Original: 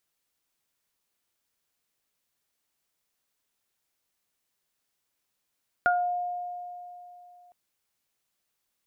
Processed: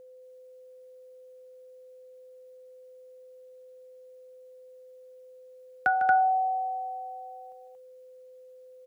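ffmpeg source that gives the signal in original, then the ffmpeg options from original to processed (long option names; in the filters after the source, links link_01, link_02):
-f lavfi -i "aevalsrc='0.0891*pow(10,-3*t/3.08)*sin(2*PI*712*t)+0.133*pow(10,-3*t/0.29)*sin(2*PI*1424*t)':duration=1.66:sample_rate=44100"
-filter_complex "[0:a]asplit=2[link_01][link_02];[link_02]aecho=0:1:151.6|230.3:0.316|0.794[link_03];[link_01][link_03]amix=inputs=2:normalize=0,afreqshift=43,aeval=exprs='val(0)+0.00398*sin(2*PI*510*n/s)':channel_layout=same"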